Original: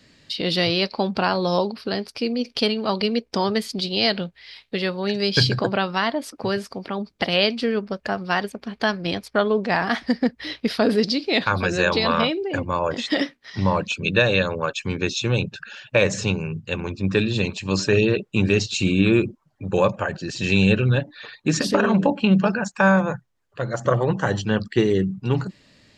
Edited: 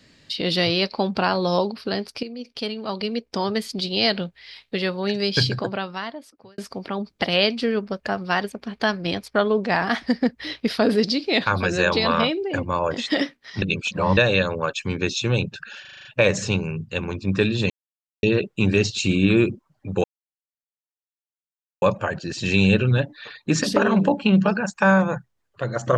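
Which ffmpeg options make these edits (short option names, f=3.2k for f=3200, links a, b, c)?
-filter_complex "[0:a]asplit=14[a][b][c][d][e][f][g][h][i][j][k][l][m][n];[a]atrim=end=2.23,asetpts=PTS-STARTPTS,afade=t=out:st=2.226:d=0.004:c=hsin:silence=0.251189[o];[b]atrim=start=2.23:end=6.58,asetpts=PTS-STARTPTS,afade=t=in:d=1.77:silence=0.251189,afade=t=out:st=2.86:d=1.49[p];[c]atrim=start=6.58:end=13.622,asetpts=PTS-STARTPTS,afade=t=in:d=0.004:c=hsin[q];[d]atrim=start=13.618:end=14.172,asetpts=PTS-STARTPTS,areverse[r];[e]atrim=start=14.168:end=15.852[s];[f]atrim=start=15.808:end=15.852[t];[g]atrim=start=15.808:end=15.852[u];[h]atrim=start=15.808:end=15.852[v];[i]atrim=start=15.808:end=15.852[w];[j]atrim=start=15.808:end=15.852[x];[k]atrim=start=15.808:end=17.46,asetpts=PTS-STARTPTS,afade=t=out:st=1.648:d=0.004:c=hsin[y];[l]atrim=start=17.46:end=17.99,asetpts=PTS-STARTPTS,volume=0[z];[m]atrim=start=17.99:end=19.8,asetpts=PTS-STARTPTS,afade=t=in:d=0.004:c=hsin,afade=t=out:st=1.806:d=0.004:c=hsin,apad=pad_dur=1.78[aa];[n]atrim=start=19.8,asetpts=PTS-STARTPTS,afade=t=in:d=0.004:c=hsin[ab];[o][p][q]concat=n=3:v=0:a=1[ac];[ac][r]acrossfade=d=0.004:c1=hsin:c2=hsin[ad];[ad][s]acrossfade=d=0.004:c1=hsin:c2=hsin[ae];[ae][t]acrossfade=d=0.004:c1=hsin:c2=hsin[af];[af][u]acrossfade=d=0.004:c1=hsin:c2=hsin[ag];[ag][v]acrossfade=d=0.004:c1=hsin:c2=hsin[ah];[ah][w]acrossfade=d=0.004:c1=hsin:c2=hsin[ai];[ai][x]acrossfade=d=0.004:c1=hsin:c2=hsin[aj];[y][z][aa][ab]concat=n=4:v=0:a=1[ak];[aj][ak]acrossfade=d=0.004:c1=hsin:c2=hsin"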